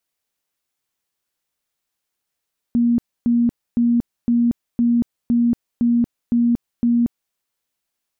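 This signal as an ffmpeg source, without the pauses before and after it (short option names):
-f lavfi -i "aevalsrc='0.224*sin(2*PI*237*mod(t,0.51))*lt(mod(t,0.51),55/237)':d=4.59:s=44100"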